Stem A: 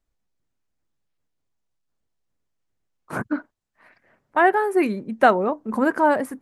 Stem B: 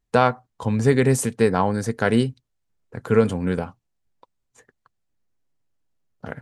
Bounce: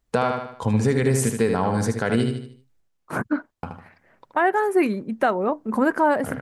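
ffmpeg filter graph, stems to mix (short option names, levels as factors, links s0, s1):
-filter_complex "[0:a]volume=1.19[s0];[1:a]volume=1.26,asplit=3[s1][s2][s3];[s1]atrim=end=2.81,asetpts=PTS-STARTPTS,afade=t=out:st=2.806:d=0.004:c=hsin[s4];[s2]atrim=start=2.81:end=3.63,asetpts=PTS-STARTPTS,volume=0[s5];[s3]atrim=start=3.63,asetpts=PTS-STARTPTS,afade=t=in:d=0.004:c=hsin[s6];[s4][s5][s6]concat=n=3:v=0:a=1,asplit=2[s7][s8];[s8]volume=0.473,aecho=0:1:76|152|228|304|380:1|0.37|0.137|0.0507|0.0187[s9];[s0][s7][s9]amix=inputs=3:normalize=0,alimiter=limit=0.335:level=0:latency=1:release=247"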